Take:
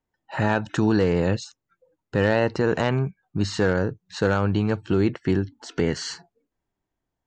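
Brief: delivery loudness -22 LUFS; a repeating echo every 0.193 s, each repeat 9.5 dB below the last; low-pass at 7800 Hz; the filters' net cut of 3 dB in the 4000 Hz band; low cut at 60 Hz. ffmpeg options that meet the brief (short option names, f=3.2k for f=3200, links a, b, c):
-af "highpass=60,lowpass=7.8k,equalizer=f=4k:t=o:g=-3.5,aecho=1:1:193|386|579|772:0.335|0.111|0.0365|0.012,volume=1.5dB"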